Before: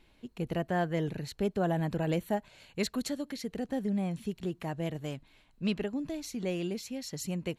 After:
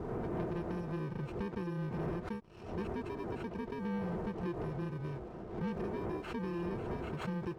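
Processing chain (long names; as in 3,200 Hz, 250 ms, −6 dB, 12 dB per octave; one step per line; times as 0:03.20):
samples in bit-reversed order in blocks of 64 samples
wind on the microphone 500 Hz −40 dBFS
downward compressor 4 to 1, threshold −37 dBFS, peak gain reduction 12.5 dB
low-pass filter 1,600 Hz 12 dB per octave
parametric band 360 Hz +5.5 dB 0.3 octaves
leveller curve on the samples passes 2
notch comb filter 280 Hz
background raised ahead of every attack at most 80 dB per second
level −2 dB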